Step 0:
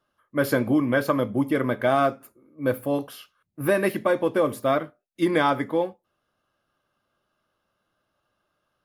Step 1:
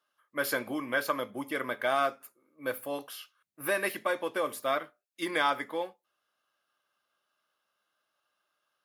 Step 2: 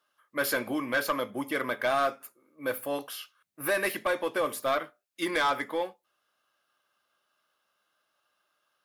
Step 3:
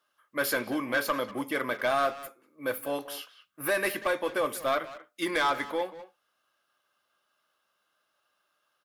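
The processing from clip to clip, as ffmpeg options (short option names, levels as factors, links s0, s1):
-af "highpass=f=1500:p=1"
-af "asoftclip=type=tanh:threshold=0.0708,volume=1.58"
-filter_complex "[0:a]asplit=2[s0][s1];[s1]adelay=190,highpass=300,lowpass=3400,asoftclip=type=hard:threshold=0.0376,volume=0.251[s2];[s0][s2]amix=inputs=2:normalize=0"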